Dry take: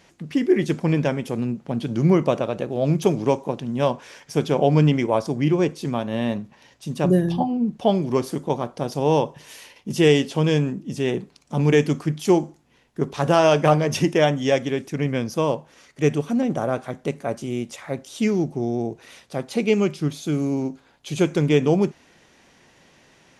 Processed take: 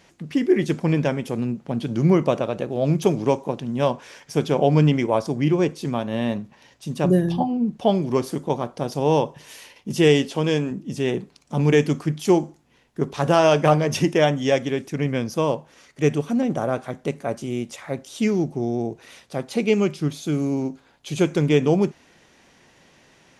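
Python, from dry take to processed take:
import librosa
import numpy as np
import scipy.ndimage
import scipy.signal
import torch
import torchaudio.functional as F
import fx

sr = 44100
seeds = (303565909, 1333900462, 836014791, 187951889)

y = fx.peak_eq(x, sr, hz=110.0, db=-12.0, octaves=0.77, at=(10.27, 10.71))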